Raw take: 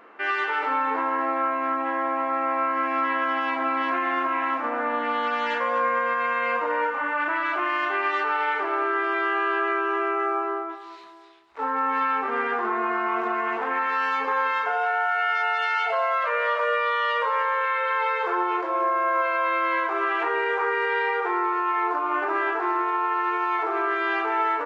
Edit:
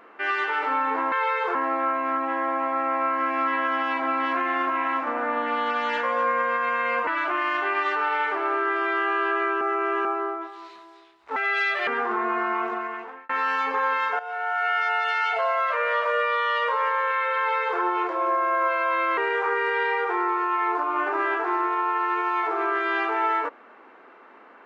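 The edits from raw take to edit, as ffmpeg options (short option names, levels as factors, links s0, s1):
-filter_complex "[0:a]asplit=11[s0][s1][s2][s3][s4][s5][s6][s7][s8][s9][s10];[s0]atrim=end=1.122[s11];[s1]atrim=start=17.908:end=18.342[s12];[s2]atrim=start=1.118:end=6.642[s13];[s3]atrim=start=7.348:end=9.892[s14];[s4]atrim=start=9.888:end=10.332,asetpts=PTS-STARTPTS,areverse[s15];[s5]atrim=start=10.328:end=11.644[s16];[s6]atrim=start=11.64:end=12.41,asetpts=PTS-STARTPTS,asetrate=66150,aresample=44100[s17];[s7]atrim=start=12.406:end=13.83,asetpts=PTS-STARTPTS,afade=t=out:st=0.644:d=0.78[s18];[s8]atrim=start=13.83:end=14.73,asetpts=PTS-STARTPTS,afade=t=in:d=0.004:c=hsin,afade=t=out:st=0.896:d=0.004:c=hsin:silence=0.199526[s19];[s9]atrim=start=14.73:end=19.712,asetpts=PTS-STARTPTS,afade=t=in:d=0.46:silence=0.199526[s20];[s10]atrim=start=20.328[s21];[s11][s12]acrossfade=d=0.004:c1=hsin:c2=hsin[s22];[s22][s13]acrossfade=d=0.004:c1=hsin:c2=hsin[s23];[s23][s14]acrossfade=d=0.004:c1=hsin:c2=hsin[s24];[s24][s15]acrossfade=d=0.004:c1=hsin:c2=hsin[s25];[s25][s16]acrossfade=d=0.004:c1=hsin:c2=hsin[s26];[s26][s17]acrossfade=d=0.004:c1=hsin:c2=hsin[s27];[s18][s19][s20]concat=n=3:v=0:a=1[s28];[s27][s28]acrossfade=d=0.004:c1=hsin:c2=hsin[s29];[s29][s21]acrossfade=d=0.004:c1=hsin:c2=hsin"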